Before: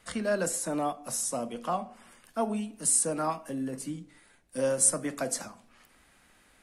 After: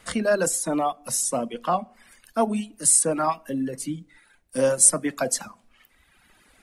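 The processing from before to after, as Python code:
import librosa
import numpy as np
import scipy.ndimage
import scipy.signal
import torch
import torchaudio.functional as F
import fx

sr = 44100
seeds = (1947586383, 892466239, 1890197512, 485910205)

y = fx.dereverb_blind(x, sr, rt60_s=1.5)
y = F.gain(torch.from_numpy(y), 7.5).numpy()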